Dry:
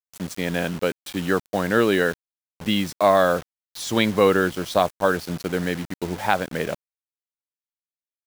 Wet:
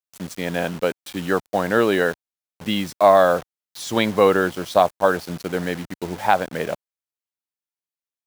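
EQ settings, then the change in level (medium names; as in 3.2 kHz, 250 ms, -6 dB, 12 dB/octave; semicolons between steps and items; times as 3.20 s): high-pass 60 Hz 6 dB/octave; dynamic bell 760 Hz, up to +6 dB, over -32 dBFS, Q 1.1; -1.0 dB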